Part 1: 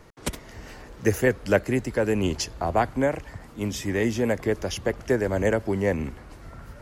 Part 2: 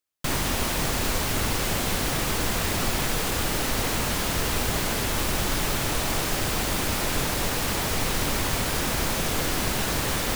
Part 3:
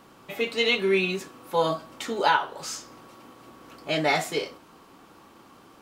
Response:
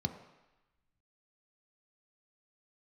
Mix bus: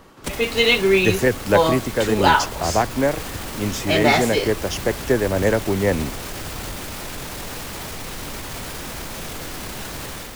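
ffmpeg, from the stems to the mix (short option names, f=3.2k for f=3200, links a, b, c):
-filter_complex "[0:a]volume=-0.5dB[a];[1:a]alimiter=limit=-24dB:level=0:latency=1:release=22,volume=-3.5dB[b];[2:a]volume=2.5dB[c];[a][b][c]amix=inputs=3:normalize=0,dynaudnorm=f=260:g=3:m=5dB"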